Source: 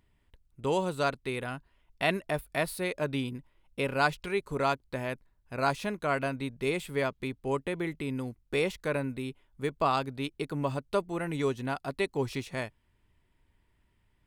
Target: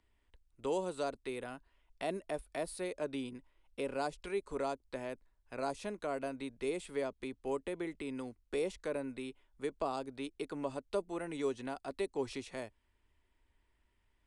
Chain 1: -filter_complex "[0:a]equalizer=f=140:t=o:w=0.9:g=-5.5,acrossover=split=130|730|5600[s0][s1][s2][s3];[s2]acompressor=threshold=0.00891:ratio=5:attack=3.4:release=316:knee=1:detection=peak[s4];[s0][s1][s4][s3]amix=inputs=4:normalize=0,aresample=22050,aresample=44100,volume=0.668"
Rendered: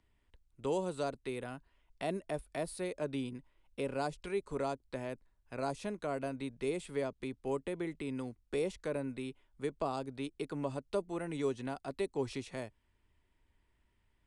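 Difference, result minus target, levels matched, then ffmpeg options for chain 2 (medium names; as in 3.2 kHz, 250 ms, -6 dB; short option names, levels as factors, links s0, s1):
125 Hz band +6.5 dB
-filter_complex "[0:a]equalizer=f=140:t=o:w=0.9:g=-14.5,acrossover=split=130|730|5600[s0][s1][s2][s3];[s2]acompressor=threshold=0.00891:ratio=5:attack=3.4:release=316:knee=1:detection=peak[s4];[s0][s1][s4][s3]amix=inputs=4:normalize=0,aresample=22050,aresample=44100,volume=0.668"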